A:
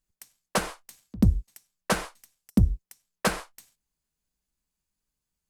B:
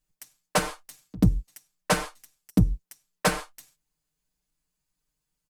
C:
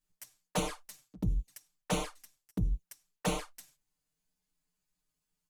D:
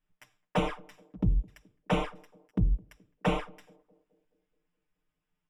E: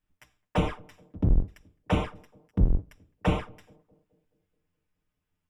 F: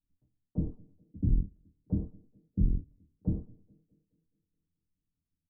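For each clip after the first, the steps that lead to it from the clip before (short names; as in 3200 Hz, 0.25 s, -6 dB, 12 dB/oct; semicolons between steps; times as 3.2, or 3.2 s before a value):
comb 6.6 ms, depth 83%
envelope flanger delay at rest 11.4 ms, full sweep at -22 dBFS; reverse; compressor 12:1, threshold -27 dBFS, peak gain reduction 14 dB; reverse
polynomial smoothing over 25 samples; narrowing echo 0.212 s, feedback 56%, band-pass 370 Hz, level -23 dB; gain +5 dB
octaver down 1 oct, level +3 dB
ladder low-pass 340 Hz, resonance 25%; doubler 25 ms -7 dB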